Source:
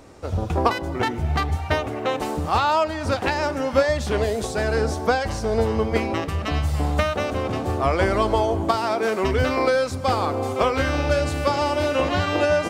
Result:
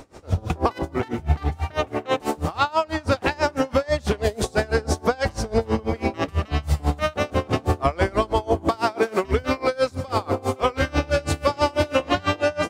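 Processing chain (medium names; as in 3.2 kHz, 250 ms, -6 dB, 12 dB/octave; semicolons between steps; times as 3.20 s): peak limiter -14.5 dBFS, peak gain reduction 10.5 dB; logarithmic tremolo 6.1 Hz, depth 26 dB; trim +7 dB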